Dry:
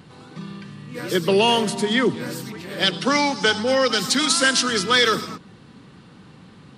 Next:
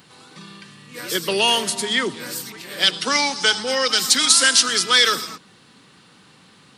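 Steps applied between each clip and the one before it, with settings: tilt +3 dB/oct; gain -1.5 dB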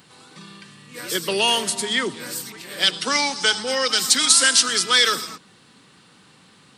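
bell 8200 Hz +4 dB 0.25 oct; gain -1.5 dB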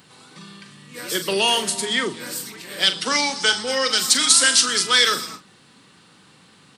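doubler 41 ms -10.5 dB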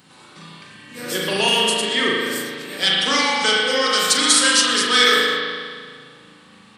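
spring tank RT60 1.8 s, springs 37 ms, chirp 35 ms, DRR -5 dB; gain -1.5 dB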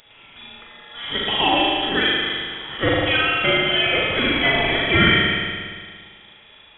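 inverted band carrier 3600 Hz

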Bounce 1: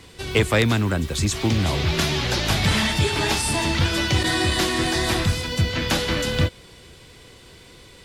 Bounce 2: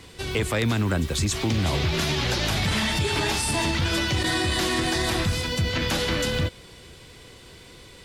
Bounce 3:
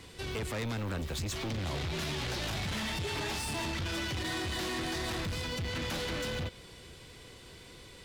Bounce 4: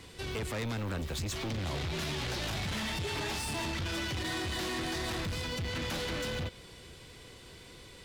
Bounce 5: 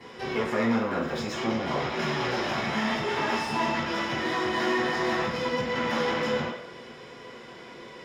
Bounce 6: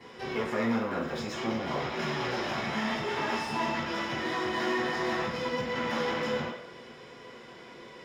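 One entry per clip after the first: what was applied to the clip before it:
limiter -15 dBFS, peak gain reduction 7.5 dB
dynamic EQ 9500 Hz, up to -5 dB, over -47 dBFS, Q 0.92; soft clip -27.5 dBFS, distortion -9 dB; gain -4.5 dB
nothing audible
reverb RT60 0.60 s, pre-delay 3 ms, DRR -13.5 dB; gain -5.5 dB
short-mantissa float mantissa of 6-bit; gain -3.5 dB

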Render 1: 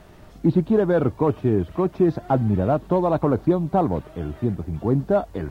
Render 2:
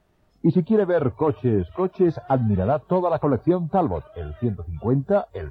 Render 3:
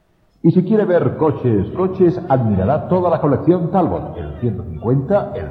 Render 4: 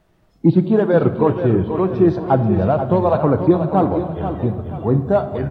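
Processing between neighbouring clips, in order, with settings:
spectral noise reduction 17 dB
shoebox room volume 2400 m³, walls mixed, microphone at 0.69 m; gain +5 dB
feedback echo 0.484 s, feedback 36%, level -9 dB; gain -1 dB

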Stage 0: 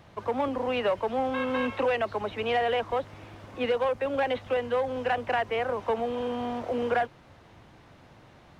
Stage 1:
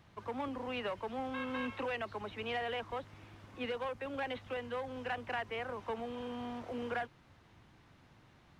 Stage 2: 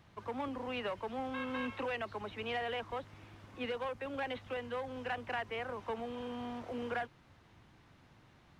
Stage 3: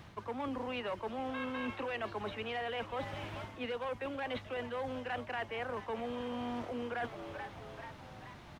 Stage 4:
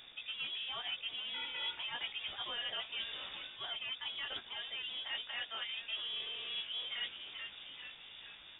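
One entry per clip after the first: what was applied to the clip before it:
bell 580 Hz -6.5 dB 1.1 oct; gain -7.5 dB
nothing audible
frequency-shifting echo 0.435 s, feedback 57%, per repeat +93 Hz, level -17.5 dB; reverse; compressor 6:1, threshold -46 dBFS, peak gain reduction 13 dB; reverse; gain +10 dB
chorus 1.8 Hz, delay 16 ms, depth 2.9 ms; bit-crush 10-bit; inverted band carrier 3600 Hz

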